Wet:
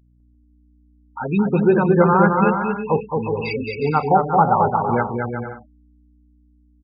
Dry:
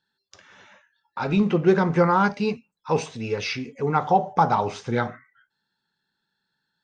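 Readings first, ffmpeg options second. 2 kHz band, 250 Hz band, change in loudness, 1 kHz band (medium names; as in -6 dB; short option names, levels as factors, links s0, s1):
+3.5 dB, +4.5 dB, +4.5 dB, +5.0 dB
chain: -filter_complex "[0:a]afftfilt=real='re*gte(hypot(re,im),0.1)':imag='im*gte(hypot(re,im),0.1)':win_size=1024:overlap=0.75,aeval=exprs='val(0)+0.00178*(sin(2*PI*60*n/s)+sin(2*PI*2*60*n/s)/2+sin(2*PI*3*60*n/s)/3+sin(2*PI*4*60*n/s)/4+sin(2*PI*5*60*n/s)/5)':c=same,dynaudnorm=f=270:g=11:m=1.58,aresample=11025,aresample=44100,asplit=2[s0][s1];[s1]aecho=0:1:220|363|456|516.4|555.6:0.631|0.398|0.251|0.158|0.1[s2];[s0][s2]amix=inputs=2:normalize=0"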